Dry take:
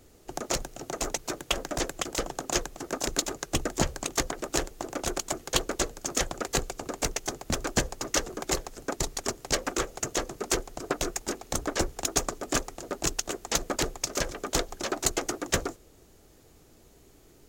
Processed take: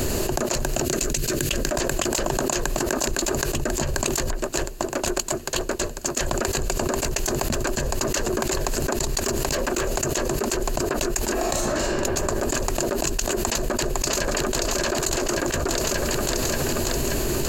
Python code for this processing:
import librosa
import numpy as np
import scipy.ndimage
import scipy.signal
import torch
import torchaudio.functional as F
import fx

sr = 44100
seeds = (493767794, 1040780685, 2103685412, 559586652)

y = fx.peak_eq(x, sr, hz=860.0, db=-15.0, octaves=1.3, at=(0.85, 1.67))
y = fx.overload_stage(y, sr, gain_db=22.5, at=(9.18, 9.96))
y = fx.reverb_throw(y, sr, start_s=11.33, length_s=0.52, rt60_s=1.1, drr_db=-9.0)
y = fx.echo_throw(y, sr, start_s=13.52, length_s=1.14, ms=580, feedback_pct=45, wet_db=-6.0)
y = fx.edit(y, sr, fx.fade_down_up(start_s=4.06, length_s=2.34, db=-23.5, fade_s=0.24, curve='log'), tone=tone)
y = fx.ripple_eq(y, sr, per_octave=1.4, db=7)
y = fx.env_flatten(y, sr, amount_pct=100)
y = y * 10.0 ** (-7.5 / 20.0)